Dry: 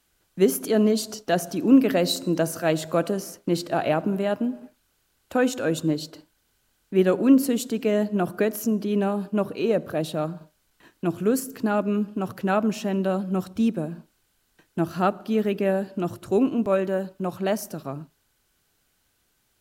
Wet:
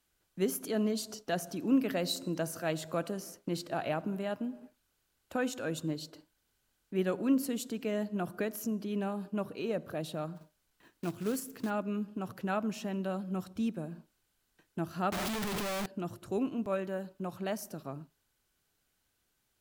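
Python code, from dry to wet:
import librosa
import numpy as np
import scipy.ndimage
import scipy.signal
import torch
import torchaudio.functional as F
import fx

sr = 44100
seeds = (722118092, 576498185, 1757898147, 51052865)

y = fx.clip_1bit(x, sr, at=(15.12, 15.86))
y = fx.dynamic_eq(y, sr, hz=390.0, q=0.82, threshold_db=-29.0, ratio=4.0, max_db=-4)
y = fx.quant_float(y, sr, bits=2, at=(10.35, 11.69), fade=0.02)
y = F.gain(torch.from_numpy(y), -8.5).numpy()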